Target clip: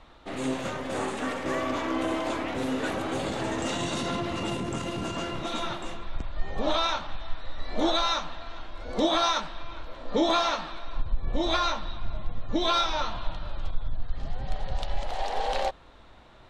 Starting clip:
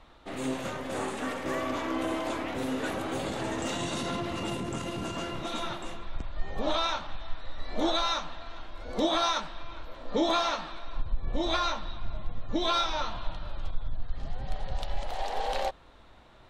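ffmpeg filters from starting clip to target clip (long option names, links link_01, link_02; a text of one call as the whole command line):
ffmpeg -i in.wav -af "lowpass=9700,volume=2.5dB" out.wav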